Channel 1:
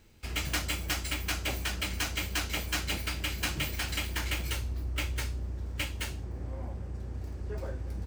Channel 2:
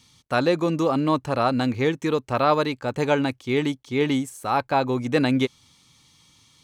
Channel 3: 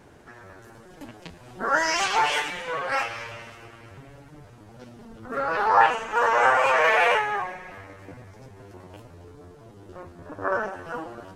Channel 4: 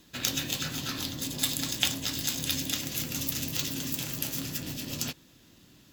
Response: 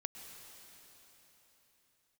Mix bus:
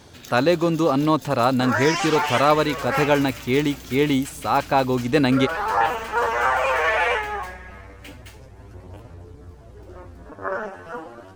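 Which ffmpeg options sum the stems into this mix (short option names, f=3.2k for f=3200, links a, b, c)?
-filter_complex "[0:a]adelay=2250,volume=-9dB[a];[1:a]volume=2.5dB[b];[2:a]equalizer=f=84:w=4.9:g=8.5,aphaser=in_gain=1:out_gain=1:delay=4.9:decay=0.35:speed=0.33:type=sinusoidal,volume=-1.5dB[c];[3:a]alimiter=limit=-14.5dB:level=0:latency=1:release=311,volume=-9dB[d];[a][b][c][d]amix=inputs=4:normalize=0"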